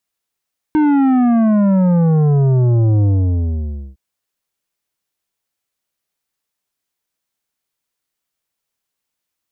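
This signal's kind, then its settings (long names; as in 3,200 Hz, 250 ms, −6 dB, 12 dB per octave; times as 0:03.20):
bass drop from 310 Hz, over 3.21 s, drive 10 dB, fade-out 0.92 s, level −11 dB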